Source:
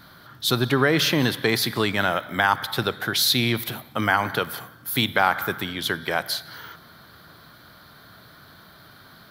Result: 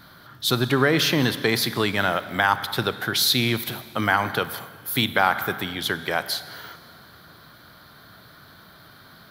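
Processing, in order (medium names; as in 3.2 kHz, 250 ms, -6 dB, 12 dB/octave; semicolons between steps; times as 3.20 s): Schroeder reverb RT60 2.3 s, combs from 31 ms, DRR 16 dB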